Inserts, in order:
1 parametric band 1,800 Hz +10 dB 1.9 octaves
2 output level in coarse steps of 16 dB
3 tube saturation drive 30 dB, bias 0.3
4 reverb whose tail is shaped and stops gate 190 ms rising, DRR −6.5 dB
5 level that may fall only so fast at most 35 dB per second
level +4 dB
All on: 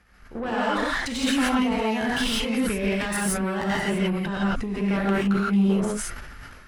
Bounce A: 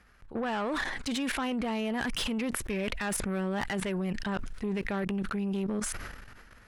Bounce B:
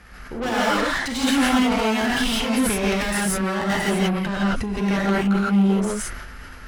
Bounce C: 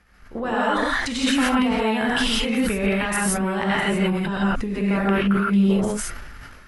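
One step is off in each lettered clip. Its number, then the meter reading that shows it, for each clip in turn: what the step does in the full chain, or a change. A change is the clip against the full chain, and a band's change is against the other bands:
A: 4, change in momentary loudness spread −3 LU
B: 2, change in integrated loudness +3.0 LU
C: 3, change in integrated loudness +3.0 LU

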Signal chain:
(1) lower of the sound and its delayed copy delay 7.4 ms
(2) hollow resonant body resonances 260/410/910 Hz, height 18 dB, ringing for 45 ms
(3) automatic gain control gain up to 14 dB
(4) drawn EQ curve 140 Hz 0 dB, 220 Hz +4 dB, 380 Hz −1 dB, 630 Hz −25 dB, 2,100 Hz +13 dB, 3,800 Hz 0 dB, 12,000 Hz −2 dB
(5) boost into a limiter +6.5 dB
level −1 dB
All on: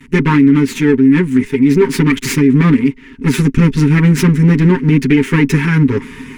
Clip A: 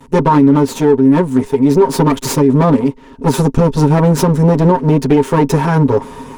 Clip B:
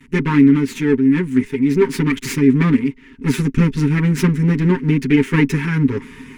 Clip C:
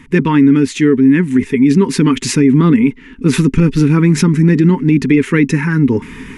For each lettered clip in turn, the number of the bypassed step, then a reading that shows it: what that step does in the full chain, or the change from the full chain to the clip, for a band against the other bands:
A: 4, 1 kHz band +10.5 dB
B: 5, change in crest factor +4.5 dB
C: 1, 8 kHz band +2.5 dB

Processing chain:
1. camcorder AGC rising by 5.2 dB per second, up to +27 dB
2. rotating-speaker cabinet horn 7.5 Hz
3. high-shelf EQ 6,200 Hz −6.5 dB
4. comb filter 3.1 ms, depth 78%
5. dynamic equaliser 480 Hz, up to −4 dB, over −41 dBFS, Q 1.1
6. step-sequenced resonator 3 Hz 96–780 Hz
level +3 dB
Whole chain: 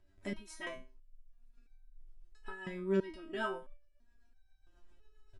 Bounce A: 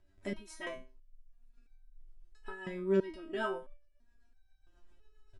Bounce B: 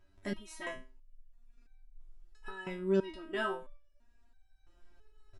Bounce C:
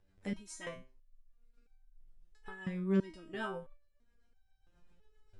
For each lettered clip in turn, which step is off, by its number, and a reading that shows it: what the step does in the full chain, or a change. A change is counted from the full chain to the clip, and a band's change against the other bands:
5, 500 Hz band +2.5 dB
2, change in integrated loudness +2.5 LU
4, 125 Hz band +8.0 dB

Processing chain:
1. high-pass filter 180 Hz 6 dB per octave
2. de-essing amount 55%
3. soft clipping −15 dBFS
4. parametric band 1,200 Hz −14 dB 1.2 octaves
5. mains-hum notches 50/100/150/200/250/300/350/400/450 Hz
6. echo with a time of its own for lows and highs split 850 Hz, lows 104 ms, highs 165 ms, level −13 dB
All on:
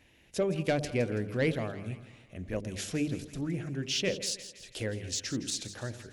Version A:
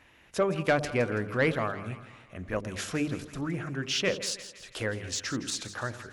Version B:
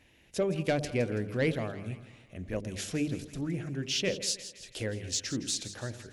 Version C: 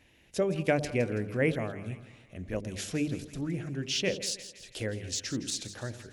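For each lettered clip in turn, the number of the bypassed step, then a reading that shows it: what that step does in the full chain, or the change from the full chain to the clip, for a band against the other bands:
4, 1 kHz band +7.5 dB
2, 8 kHz band +1.5 dB
3, distortion level −17 dB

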